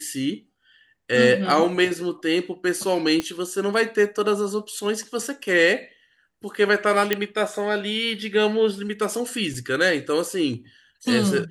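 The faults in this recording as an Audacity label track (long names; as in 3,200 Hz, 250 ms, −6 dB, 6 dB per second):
3.200000	3.200000	click −11 dBFS
7.130000	7.130000	click −6 dBFS
9.540000	9.540000	drop-out 3.2 ms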